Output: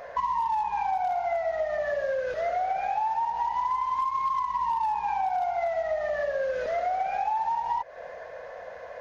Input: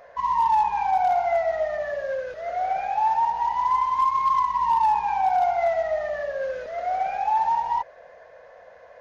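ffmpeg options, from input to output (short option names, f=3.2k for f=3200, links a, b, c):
-af "acompressor=threshold=-32dB:ratio=10,volume=7dB"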